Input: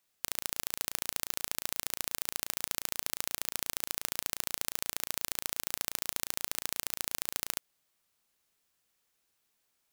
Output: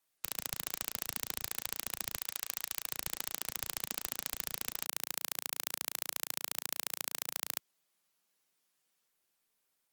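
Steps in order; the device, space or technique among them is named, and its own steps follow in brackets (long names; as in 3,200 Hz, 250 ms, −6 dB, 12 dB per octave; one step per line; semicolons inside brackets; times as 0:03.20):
0:02.16–0:02.91: high-pass filter 730 Hz 6 dB per octave
noise-suppressed video call (high-pass filter 140 Hz 24 dB per octave; gate on every frequency bin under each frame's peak −20 dB strong; level −2 dB; Opus 24 kbit/s 48,000 Hz)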